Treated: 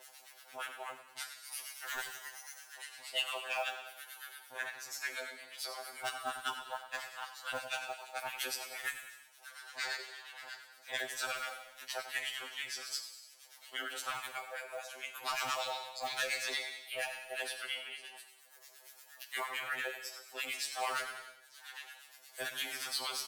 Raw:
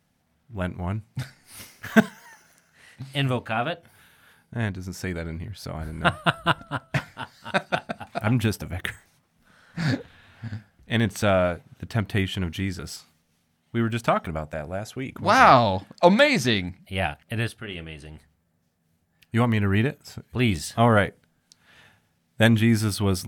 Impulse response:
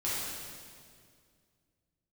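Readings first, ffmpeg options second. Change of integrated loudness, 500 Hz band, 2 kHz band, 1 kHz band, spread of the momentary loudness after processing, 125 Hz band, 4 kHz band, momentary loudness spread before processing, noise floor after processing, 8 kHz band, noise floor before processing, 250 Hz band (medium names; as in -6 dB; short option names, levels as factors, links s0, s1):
-15.5 dB, -20.0 dB, -10.5 dB, -16.0 dB, 15 LU, under -40 dB, -6.5 dB, 19 LU, -60 dBFS, -3.0 dB, -69 dBFS, -36.0 dB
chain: -filter_complex "[0:a]highpass=f=640:w=0.5412,highpass=f=640:w=1.3066,highshelf=f=3600:g=6,asoftclip=type=tanh:threshold=0.112,acrossover=split=1100[s0][s1];[s0]aeval=exprs='val(0)*(1-1/2+1/2*cos(2*PI*8.6*n/s))':c=same[s2];[s1]aeval=exprs='val(0)*(1-1/2-1/2*cos(2*PI*8.6*n/s))':c=same[s3];[s2][s3]amix=inputs=2:normalize=0,acompressor=mode=upward:threshold=0.00794:ratio=2.5,acrusher=bits=7:mode=log:mix=0:aa=0.000001,aecho=1:1:93|186|279|372:0.224|0.0963|0.0414|0.0178,aeval=exprs='val(0)*sin(2*PI*72*n/s)':c=same,acrossover=split=1200|4600[s4][s5][s6];[s4]acompressor=threshold=0.00562:ratio=4[s7];[s5]acompressor=threshold=0.01:ratio=4[s8];[s6]acompressor=threshold=0.00447:ratio=4[s9];[s7][s8][s9]amix=inputs=3:normalize=0,asplit=2[s10][s11];[s11]tiltshelf=f=1300:g=-6.5[s12];[1:a]atrim=start_sample=2205,afade=t=out:st=0.42:d=0.01,atrim=end_sample=18963,asetrate=48510,aresample=44100[s13];[s12][s13]afir=irnorm=-1:irlink=0,volume=0.178[s14];[s10][s14]amix=inputs=2:normalize=0,afftfilt=real='re*2.45*eq(mod(b,6),0)':imag='im*2.45*eq(mod(b,6),0)':win_size=2048:overlap=0.75,volume=1.78"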